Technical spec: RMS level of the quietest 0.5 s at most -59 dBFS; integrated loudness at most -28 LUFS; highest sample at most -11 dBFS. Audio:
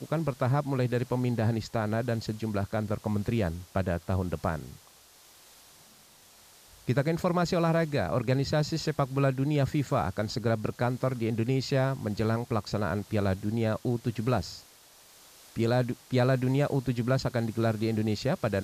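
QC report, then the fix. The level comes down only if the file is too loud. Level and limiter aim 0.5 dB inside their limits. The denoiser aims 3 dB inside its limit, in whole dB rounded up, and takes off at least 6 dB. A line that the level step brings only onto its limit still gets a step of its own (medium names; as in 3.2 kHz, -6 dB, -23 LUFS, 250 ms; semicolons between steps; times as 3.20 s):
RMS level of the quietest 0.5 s -56 dBFS: fail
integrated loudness -29.0 LUFS: pass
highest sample -13.0 dBFS: pass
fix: noise reduction 6 dB, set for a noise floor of -56 dBFS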